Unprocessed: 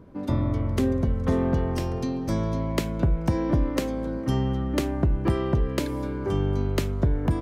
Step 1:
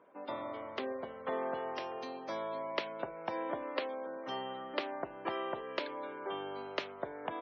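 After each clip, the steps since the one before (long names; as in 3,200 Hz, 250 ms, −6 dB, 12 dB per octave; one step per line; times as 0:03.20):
Chebyshev band-pass filter 640–3,500 Hz, order 2
gate on every frequency bin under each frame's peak −30 dB strong
level −3 dB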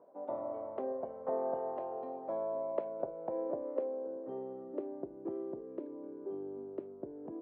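reversed playback
upward compression, threshold −47 dBFS
reversed playback
low-pass filter sweep 680 Hz → 340 Hz, 0:02.38–0:05.46
level −3 dB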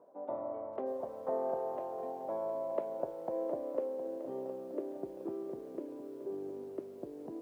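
feedback echo at a low word length 713 ms, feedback 55%, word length 10 bits, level −12 dB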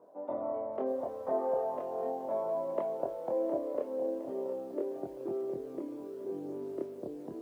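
multi-voice chorus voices 2, 0.37 Hz, delay 25 ms, depth 2.5 ms
level +6 dB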